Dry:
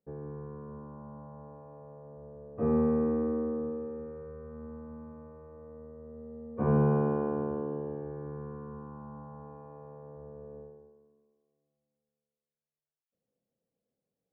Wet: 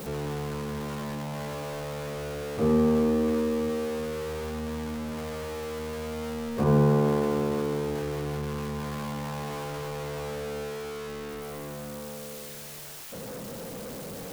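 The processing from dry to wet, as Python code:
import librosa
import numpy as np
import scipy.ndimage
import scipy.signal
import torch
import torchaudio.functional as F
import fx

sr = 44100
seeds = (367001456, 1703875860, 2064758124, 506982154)

y = x + 0.5 * 10.0 ** (-34.0 / 20.0) * np.sign(x)
y = F.gain(torch.from_numpy(y), 3.0).numpy()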